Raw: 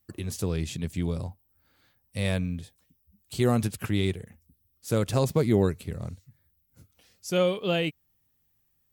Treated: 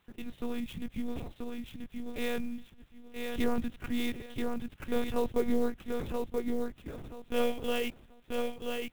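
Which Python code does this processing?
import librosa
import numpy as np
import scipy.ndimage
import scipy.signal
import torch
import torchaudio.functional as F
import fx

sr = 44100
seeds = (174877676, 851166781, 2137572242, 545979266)

y = fx.low_shelf(x, sr, hz=72.0, db=-3.5)
y = fx.quant_dither(y, sr, seeds[0], bits=10, dither='triangular')
y = fx.echo_feedback(y, sr, ms=983, feedback_pct=25, wet_db=-4)
y = fx.lpc_monotone(y, sr, seeds[1], pitch_hz=240.0, order=8)
y = fx.clock_jitter(y, sr, seeds[2], jitter_ms=0.022)
y = F.gain(torch.from_numpy(y), -4.5).numpy()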